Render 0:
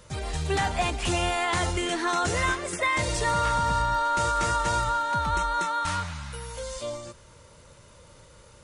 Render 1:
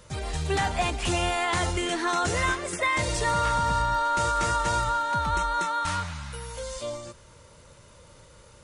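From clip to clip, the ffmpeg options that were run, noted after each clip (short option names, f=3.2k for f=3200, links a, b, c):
-af anull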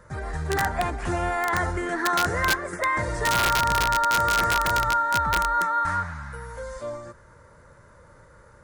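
-af "highshelf=f=2.2k:t=q:w=3:g=-9,aeval=exprs='(mod(5.31*val(0)+1,2)-1)/5.31':c=same"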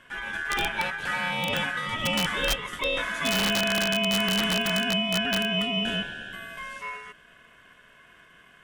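-af "aeval=exprs='val(0)*sin(2*PI*1600*n/s)':c=same"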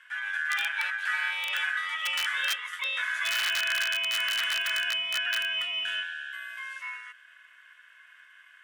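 -af "highpass=f=1.6k:t=q:w=2.1,volume=-4.5dB"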